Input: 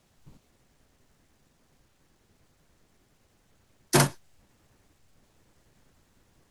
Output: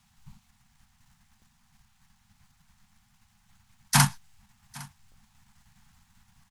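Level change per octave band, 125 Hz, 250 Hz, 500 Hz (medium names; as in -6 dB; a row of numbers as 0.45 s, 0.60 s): +2.5 dB, -2.0 dB, -15.0 dB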